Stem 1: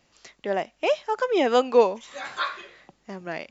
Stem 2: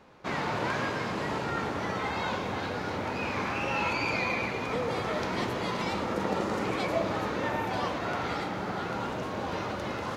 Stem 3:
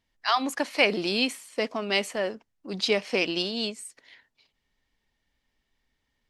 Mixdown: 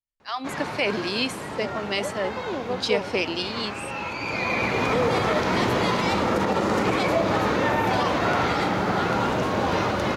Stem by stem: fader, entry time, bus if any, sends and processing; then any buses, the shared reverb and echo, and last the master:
-9.0 dB, 1.15 s, no bus, no send, boxcar filter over 18 samples
-1.0 dB, 0.20 s, bus A, no send, auto duck -12 dB, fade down 0.80 s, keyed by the third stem
-10.5 dB, 0.00 s, bus A, no send, three bands expanded up and down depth 40%
bus A: 0.0 dB, level rider gain up to 11 dB; peak limiter -13 dBFS, peak gain reduction 7.5 dB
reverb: none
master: none

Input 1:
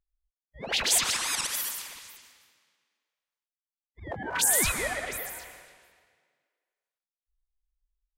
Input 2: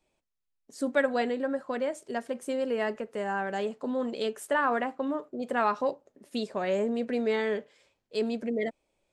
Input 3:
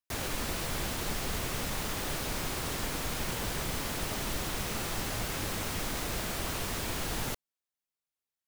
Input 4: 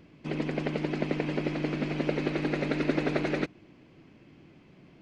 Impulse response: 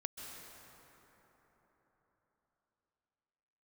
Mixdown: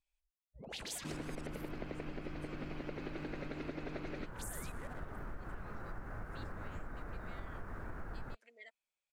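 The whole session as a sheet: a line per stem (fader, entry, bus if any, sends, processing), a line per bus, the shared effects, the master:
-16.0 dB, 0.00 s, no send, local Wiener filter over 25 samples; bass shelf 440 Hz +9.5 dB
-12.5 dB, 0.00 s, no send, high-pass 1.5 kHz 12 dB/octave; peak limiter -30.5 dBFS, peak gain reduction 11.5 dB
-5.5 dB, 1.00 s, no send, FFT filter 970 Hz 0 dB, 1.5 kHz +5 dB, 3.3 kHz -26 dB; bass shelf 63 Hz +10 dB
-3.0 dB, 0.80 s, no send, none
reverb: none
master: compression 6:1, threshold -40 dBFS, peak gain reduction 15.5 dB

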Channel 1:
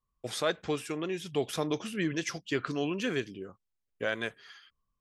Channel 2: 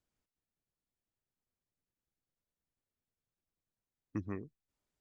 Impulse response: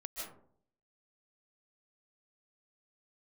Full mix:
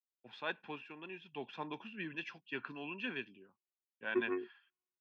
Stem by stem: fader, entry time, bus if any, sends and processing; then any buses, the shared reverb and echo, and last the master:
-12.5 dB, 0.00 s, no send, comb 1.2 ms, depth 55%
-0.5 dB, 0.00 s, no send, robot voice 363 Hz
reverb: none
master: cabinet simulation 210–3500 Hz, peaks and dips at 230 Hz +6 dB, 390 Hz +6 dB, 650 Hz -6 dB, 940 Hz +8 dB, 1.4 kHz +5 dB, 2.7 kHz +10 dB; three bands expanded up and down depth 70%

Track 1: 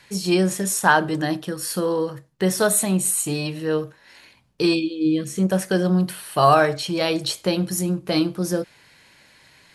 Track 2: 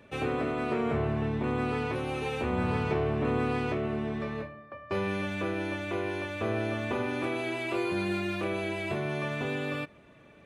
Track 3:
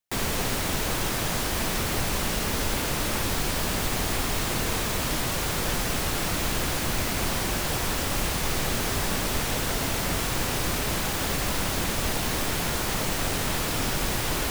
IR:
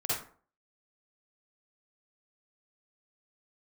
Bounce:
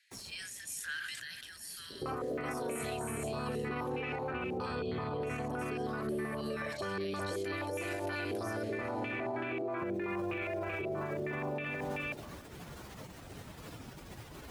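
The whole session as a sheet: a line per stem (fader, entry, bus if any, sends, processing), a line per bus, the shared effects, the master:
-17.5 dB, 0.00 s, no bus, no send, echo send -17.5 dB, steep high-pass 1.6 kHz 48 dB/octave; decay stretcher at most 21 dB/s
+1.0 dB, 1.90 s, bus A, no send, echo send -7 dB, step-sequenced low-pass 6.3 Hz 390–2600 Hz
-17.5 dB, 0.00 s, bus A, no send, no echo send, spectral contrast enhancement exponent 1.6; high-pass 70 Hz; auto duck -16 dB, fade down 0.55 s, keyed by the first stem
bus A: 0.0 dB, compression, threshold -29 dBFS, peak gain reduction 11.5 dB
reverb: none
echo: delay 381 ms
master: peak limiter -29 dBFS, peak gain reduction 12 dB

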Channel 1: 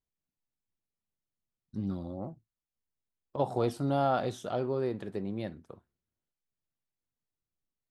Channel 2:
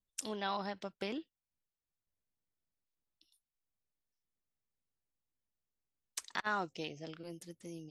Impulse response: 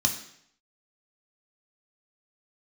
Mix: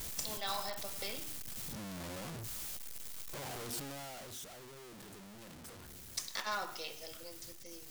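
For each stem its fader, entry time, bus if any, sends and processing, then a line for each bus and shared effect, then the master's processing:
3.82 s -8 dB -> 4.47 s -16.5 dB, 0.00 s, no send, one-bit comparator; treble shelf 3.6 kHz +8.5 dB
+1.0 dB, 0.00 s, send -9.5 dB, one-sided wavefolder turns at -31.5 dBFS; high-pass 580 Hz 12 dB/octave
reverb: on, RT60 0.70 s, pre-delay 3 ms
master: none

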